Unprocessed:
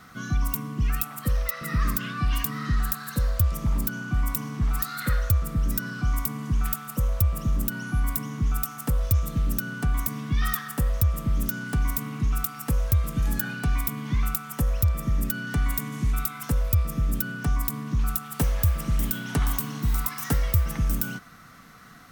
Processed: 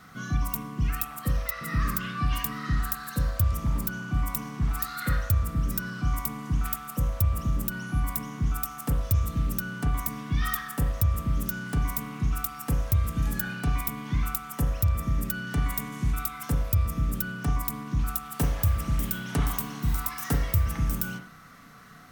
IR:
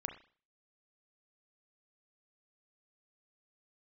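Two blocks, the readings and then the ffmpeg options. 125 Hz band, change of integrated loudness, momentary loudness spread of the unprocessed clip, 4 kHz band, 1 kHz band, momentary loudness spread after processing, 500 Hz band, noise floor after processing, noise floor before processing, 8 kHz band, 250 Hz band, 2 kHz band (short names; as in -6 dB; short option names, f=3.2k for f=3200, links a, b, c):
-1.5 dB, -2.0 dB, 4 LU, -1.5 dB, +0.5 dB, 4 LU, -2.0 dB, -43 dBFS, -42 dBFS, -2.5 dB, -1.5 dB, -1.5 dB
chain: -filter_complex "[1:a]atrim=start_sample=2205[a];[0:a][a]afir=irnorm=-1:irlink=0"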